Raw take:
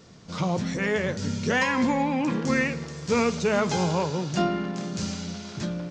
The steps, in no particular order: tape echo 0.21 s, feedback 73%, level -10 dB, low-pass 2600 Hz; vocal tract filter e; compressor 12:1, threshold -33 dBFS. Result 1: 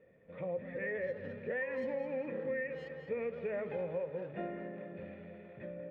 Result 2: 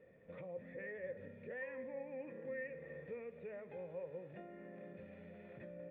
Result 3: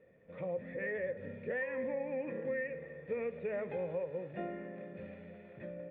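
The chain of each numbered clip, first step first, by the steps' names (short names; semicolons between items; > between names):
vocal tract filter > tape echo > compressor; tape echo > compressor > vocal tract filter; tape echo > vocal tract filter > compressor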